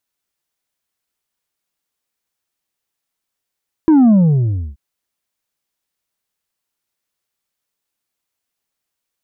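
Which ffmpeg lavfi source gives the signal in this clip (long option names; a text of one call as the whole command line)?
ffmpeg -f lavfi -i "aevalsrc='0.447*clip((0.88-t)/0.66,0,1)*tanh(1.58*sin(2*PI*330*0.88/log(65/330)*(exp(log(65/330)*t/0.88)-1)))/tanh(1.58)':duration=0.88:sample_rate=44100" out.wav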